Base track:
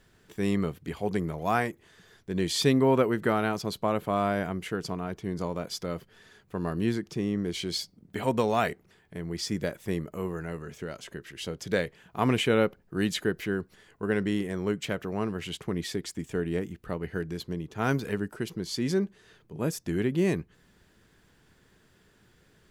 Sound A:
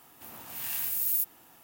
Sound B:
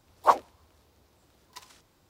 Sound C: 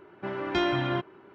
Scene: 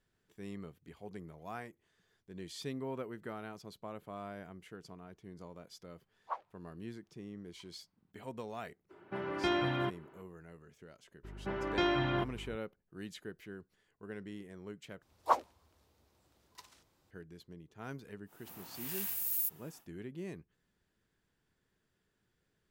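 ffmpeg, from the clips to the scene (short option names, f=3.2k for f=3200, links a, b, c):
-filter_complex "[2:a]asplit=2[a][b];[3:a]asplit=2[c][d];[0:a]volume=-18dB[e];[a]highpass=740,lowpass=2.4k[f];[d]aeval=exprs='val(0)+0.00794*(sin(2*PI*50*n/s)+sin(2*PI*2*50*n/s)/2+sin(2*PI*3*50*n/s)/3+sin(2*PI*4*50*n/s)/4+sin(2*PI*5*50*n/s)/5)':c=same[g];[e]asplit=2[h][i];[h]atrim=end=15.024[j];[b]atrim=end=2.09,asetpts=PTS-STARTPTS,volume=-8dB[k];[i]atrim=start=17.106[l];[f]atrim=end=2.09,asetpts=PTS-STARTPTS,volume=-17.5dB,afade=t=in:d=0.004:c=hsin,afade=t=out:st=2.086:d=0.004:c=hsin,adelay=6030[m];[c]atrim=end=1.34,asetpts=PTS-STARTPTS,volume=-5.5dB,afade=t=in:d=0.02,afade=t=out:st=1.32:d=0.02,adelay=8890[n];[g]atrim=end=1.34,asetpts=PTS-STARTPTS,volume=-4.5dB,afade=t=in:d=0.02,afade=t=out:st=1.32:d=0.02,adelay=11230[o];[1:a]atrim=end=1.63,asetpts=PTS-STARTPTS,volume=-6dB,afade=t=in:d=0.1,afade=t=out:st=1.53:d=0.1,adelay=18250[p];[j][k]acrossfade=d=0.004:c1=hsin:c2=hsin[q];[q][l]acrossfade=d=0.004:c1=hsin:c2=hsin[r];[r][m][n][o][p]amix=inputs=5:normalize=0"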